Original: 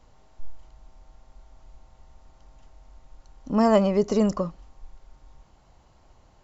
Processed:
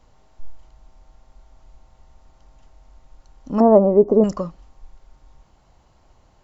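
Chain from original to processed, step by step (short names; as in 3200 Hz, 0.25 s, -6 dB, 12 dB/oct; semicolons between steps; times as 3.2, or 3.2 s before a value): 3.6–4.24 EQ curve 170 Hz 0 dB, 320 Hz +10 dB, 860 Hz +4 dB, 3000 Hz -30 dB; gain +1 dB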